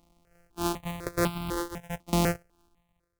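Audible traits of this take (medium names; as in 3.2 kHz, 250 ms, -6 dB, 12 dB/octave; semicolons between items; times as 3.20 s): a buzz of ramps at a fixed pitch in blocks of 256 samples; tremolo saw down 0.94 Hz, depth 90%; notches that jump at a steady rate 4 Hz 440–1800 Hz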